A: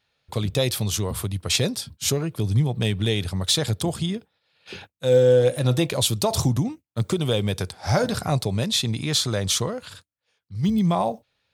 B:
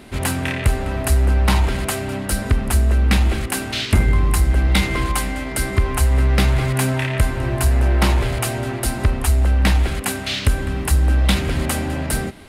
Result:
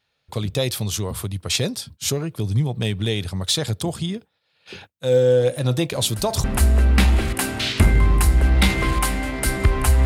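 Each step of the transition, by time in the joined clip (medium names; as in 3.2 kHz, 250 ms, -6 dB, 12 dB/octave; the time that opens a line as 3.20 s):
A
5.92 s: add B from 2.05 s 0.52 s -15 dB
6.44 s: go over to B from 2.57 s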